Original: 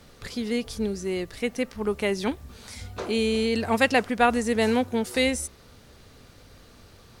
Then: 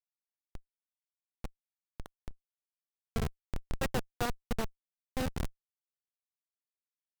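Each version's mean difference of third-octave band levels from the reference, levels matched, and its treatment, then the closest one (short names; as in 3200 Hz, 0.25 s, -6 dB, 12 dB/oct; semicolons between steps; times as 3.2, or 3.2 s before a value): 19.5 dB: high shelf 3200 Hz +10 dB; Schmitt trigger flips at -14 dBFS; random-step tremolo 1.3 Hz; gain -3 dB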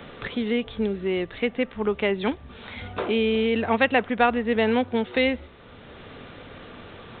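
8.0 dB: low shelf 130 Hz -6.5 dB; downsampling 8000 Hz; three-band squash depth 40%; gain +2.5 dB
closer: second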